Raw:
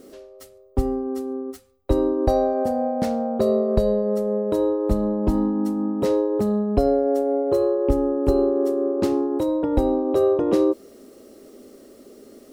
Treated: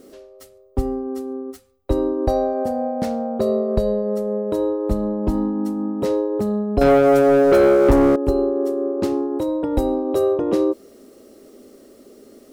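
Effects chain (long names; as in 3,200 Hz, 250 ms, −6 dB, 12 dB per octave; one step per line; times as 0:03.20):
0:06.81–0:08.16: leveller curve on the samples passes 3
0:09.63–0:10.36: high-shelf EQ 4,800 Hz +9 dB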